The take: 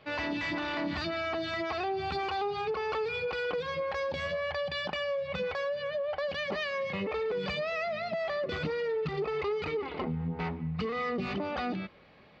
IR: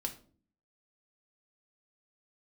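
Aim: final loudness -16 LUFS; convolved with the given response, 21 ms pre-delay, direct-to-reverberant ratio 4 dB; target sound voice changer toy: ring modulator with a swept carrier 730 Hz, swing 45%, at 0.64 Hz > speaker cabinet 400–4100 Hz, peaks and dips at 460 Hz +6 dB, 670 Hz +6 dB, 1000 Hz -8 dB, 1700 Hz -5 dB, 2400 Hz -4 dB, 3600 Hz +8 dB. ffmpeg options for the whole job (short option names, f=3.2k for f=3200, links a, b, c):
-filter_complex "[0:a]asplit=2[a][b];[1:a]atrim=start_sample=2205,adelay=21[c];[b][c]afir=irnorm=-1:irlink=0,volume=-4dB[d];[a][d]amix=inputs=2:normalize=0,aeval=exprs='val(0)*sin(2*PI*730*n/s+730*0.45/0.64*sin(2*PI*0.64*n/s))':c=same,highpass=400,equalizer=f=460:t=q:w=4:g=6,equalizer=f=670:t=q:w=4:g=6,equalizer=f=1k:t=q:w=4:g=-8,equalizer=f=1.7k:t=q:w=4:g=-5,equalizer=f=2.4k:t=q:w=4:g=-4,equalizer=f=3.6k:t=q:w=4:g=8,lowpass=f=4.1k:w=0.5412,lowpass=f=4.1k:w=1.3066,volume=19dB"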